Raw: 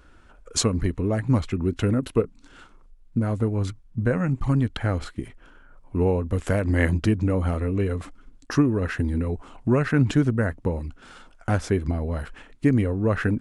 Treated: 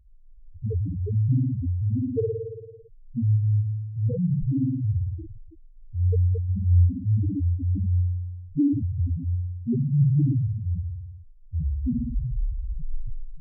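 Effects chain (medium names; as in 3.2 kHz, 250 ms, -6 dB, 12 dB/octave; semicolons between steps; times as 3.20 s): tape stop on the ending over 2.40 s; low-pass 1.1 kHz 6 dB/octave; flutter echo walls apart 9.6 m, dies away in 1.4 s; loudest bins only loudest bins 1; trim +4 dB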